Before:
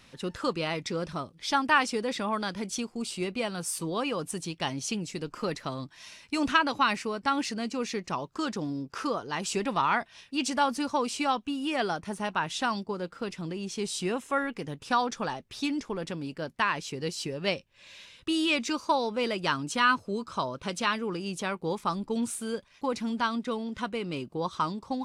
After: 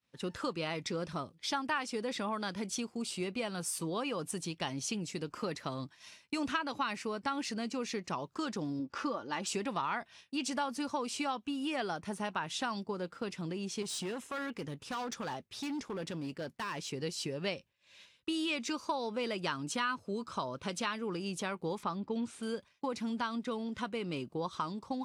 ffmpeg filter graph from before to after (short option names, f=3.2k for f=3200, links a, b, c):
-filter_complex "[0:a]asettb=1/sr,asplit=3[a][b][c];[a]atrim=end=8.794[d];[b]atrim=start=8.79:end=9.47,asetpts=PTS-STARTPTS,afade=t=in:d=0.004:c=qsin,afade=t=out:st=0.676:d=0.004:c=qsin,aecho=1:1:3.5:0.5,atrim=end_sample=29988,adynamicsmooth=sensitivity=3:basefreq=5.7k[e];[c]atrim=start=9.466[f];[d][e]acrossfade=d=0.004:c1=hsin:c2=qsin[g];[g][f]acrossfade=d=0.004:c1=qsin:c2=hsin,asettb=1/sr,asplit=3[h][i][j];[h]atrim=end=13.824[k];[i]atrim=start=13.82:end=16.91,asetpts=PTS-STARTPTS,afade=t=in:d=0.004:c=qsin,afade=t=out:st=3.086:d=0.004:c=qsin,acompressor=threshold=-29dB:ratio=2.5:attack=3.2:release=140:knee=1:detection=peak,asoftclip=type=hard:threshold=-31.5dB[l];[j]atrim=start=16.906[m];[k][l]acrossfade=d=0.004:c1=hsin:c2=qsin[n];[n][m]acrossfade=d=0.004:c1=qsin:c2=hsin,asettb=1/sr,asplit=3[o][p][q];[o]atrim=end=21.834[r];[p]atrim=start=21.83:end=22.43,asetpts=PTS-STARTPTS,afade=t=in:d=0.004:c=qsin,afade=t=out:st=0.596:d=0.004:c=qsin,lowpass=4.1k,acompressor=mode=upward:threshold=-41dB:ratio=2.5:attack=3.2:release=140:knee=2.83:detection=peak[s];[q]atrim=start=22.426[t];[r][s]acrossfade=d=0.004:c1=hsin:c2=qsin[u];[u][t]acrossfade=d=0.004:c1=qsin:c2=hsin,highpass=63,agate=range=-33dB:threshold=-43dB:ratio=3:detection=peak,acompressor=threshold=-30dB:ratio=3,volume=-2.5dB"